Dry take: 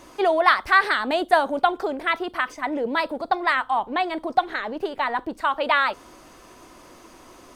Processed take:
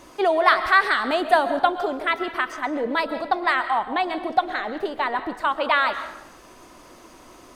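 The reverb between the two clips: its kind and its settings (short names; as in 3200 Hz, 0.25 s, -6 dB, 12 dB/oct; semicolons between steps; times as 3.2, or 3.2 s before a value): digital reverb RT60 0.86 s, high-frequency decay 0.8×, pre-delay 90 ms, DRR 10.5 dB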